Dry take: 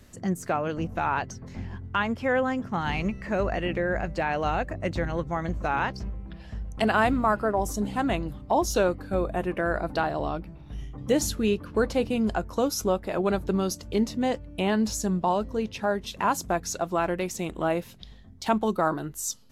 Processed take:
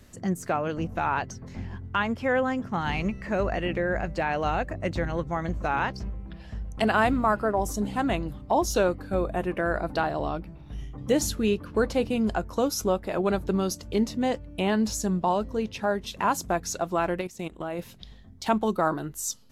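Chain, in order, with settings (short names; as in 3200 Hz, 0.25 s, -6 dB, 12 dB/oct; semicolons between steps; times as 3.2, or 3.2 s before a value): 17.21–17.79 level quantiser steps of 16 dB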